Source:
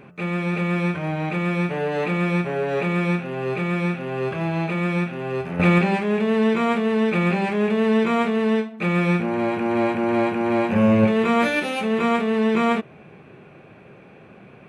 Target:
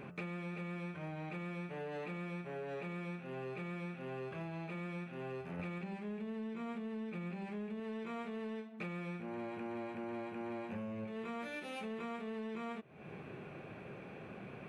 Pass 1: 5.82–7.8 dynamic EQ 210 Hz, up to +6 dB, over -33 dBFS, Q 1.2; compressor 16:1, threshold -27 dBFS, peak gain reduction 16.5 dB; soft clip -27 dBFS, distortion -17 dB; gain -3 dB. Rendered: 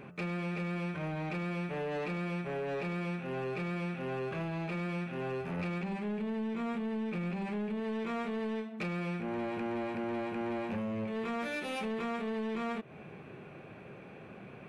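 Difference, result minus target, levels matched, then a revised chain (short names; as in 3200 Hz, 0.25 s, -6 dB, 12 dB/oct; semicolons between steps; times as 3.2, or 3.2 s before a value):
compressor: peak gain reduction -9 dB
5.82–7.8 dynamic EQ 210 Hz, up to +6 dB, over -33 dBFS, Q 1.2; compressor 16:1, threshold -36.5 dBFS, peak gain reduction 25.5 dB; soft clip -27 dBFS, distortion -31 dB; gain -3 dB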